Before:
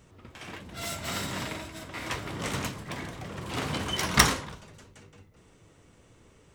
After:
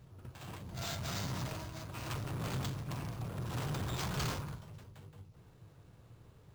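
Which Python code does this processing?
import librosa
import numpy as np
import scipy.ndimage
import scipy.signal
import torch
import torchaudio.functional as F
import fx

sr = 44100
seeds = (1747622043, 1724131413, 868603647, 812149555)

y = fx.formant_shift(x, sr, semitones=3)
y = fx.graphic_eq_10(y, sr, hz=(125, 250, 500, 2000, 4000, 8000, 16000), db=(9, -6, -4, -9, -7, -9, 10))
y = fx.tube_stage(y, sr, drive_db=33.0, bias=0.45)
y = np.repeat(y[::4], 4)[:len(y)]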